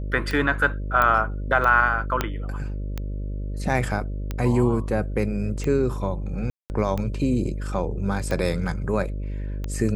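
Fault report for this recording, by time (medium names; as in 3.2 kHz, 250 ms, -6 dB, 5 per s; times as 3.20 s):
buzz 50 Hz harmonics 12 -29 dBFS
tick 45 rpm -15 dBFS
1.02 s: pop -9 dBFS
2.21 s: pop -7 dBFS
6.50–6.70 s: dropout 199 ms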